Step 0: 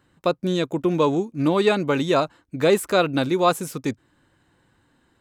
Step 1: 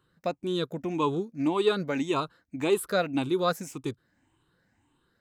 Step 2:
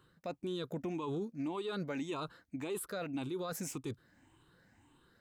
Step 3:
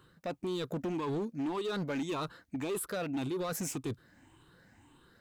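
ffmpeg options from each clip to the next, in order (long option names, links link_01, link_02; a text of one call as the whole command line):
ffmpeg -i in.wav -af "afftfilt=real='re*pow(10,11/40*sin(2*PI*(0.64*log(max(b,1)*sr/1024/100)/log(2)-(1.8)*(pts-256)/sr)))':imag='im*pow(10,11/40*sin(2*PI*(0.64*log(max(b,1)*sr/1024/100)/log(2)-(1.8)*(pts-256)/sr)))':win_size=1024:overlap=0.75,equalizer=frequency=560:width_type=o:width=0.35:gain=-3,volume=-8.5dB" out.wav
ffmpeg -i in.wav -af "areverse,acompressor=threshold=-35dB:ratio=6,areverse,alimiter=level_in=10.5dB:limit=-24dB:level=0:latency=1:release=44,volume=-10.5dB,volume=3.5dB" out.wav
ffmpeg -i in.wav -af "asoftclip=type=hard:threshold=-35.5dB,volume=5dB" out.wav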